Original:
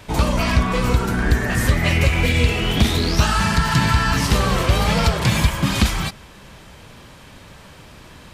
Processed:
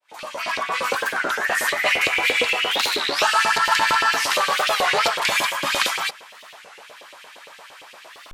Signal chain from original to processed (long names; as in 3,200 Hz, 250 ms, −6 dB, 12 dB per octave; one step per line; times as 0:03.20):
fade in at the beginning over 0.92 s
auto-filter high-pass saw up 8.7 Hz 450–3,100 Hz
wow of a warped record 33 1/3 rpm, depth 250 cents